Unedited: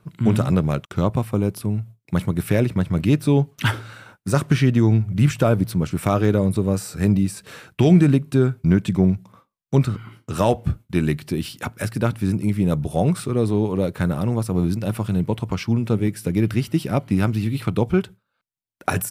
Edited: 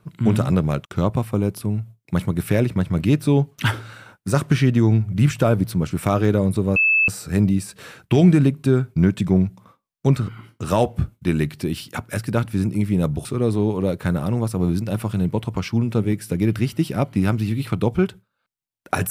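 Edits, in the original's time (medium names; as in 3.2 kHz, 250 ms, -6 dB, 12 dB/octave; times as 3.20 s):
6.76 s: add tone 2.62 kHz -13.5 dBFS 0.32 s
12.93–13.20 s: delete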